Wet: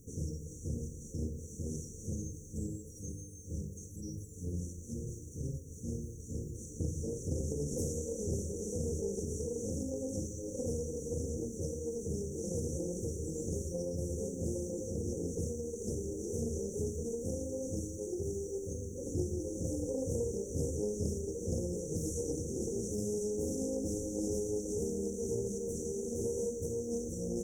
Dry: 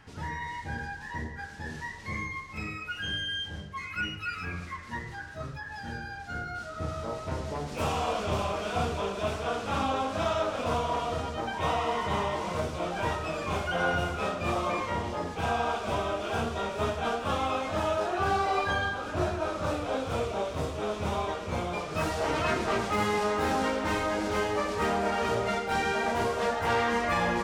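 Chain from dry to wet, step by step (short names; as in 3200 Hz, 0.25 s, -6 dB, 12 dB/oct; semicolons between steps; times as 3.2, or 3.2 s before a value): bell 5600 Hz +9 dB 2.6 oct; compressor 5:1, threshold -30 dBFS, peak gain reduction 8.5 dB; added noise blue -70 dBFS; brick-wall FIR band-stop 550–5700 Hz; Doppler distortion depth 0.2 ms; gain +2 dB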